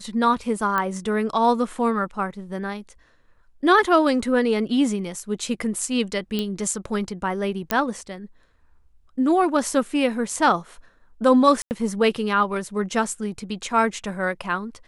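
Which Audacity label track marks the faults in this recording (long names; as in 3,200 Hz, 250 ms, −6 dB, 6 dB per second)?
0.780000	0.780000	click −11 dBFS
6.390000	6.390000	click −12 dBFS
7.710000	7.710000	click −4 dBFS
11.620000	11.710000	drop-out 89 ms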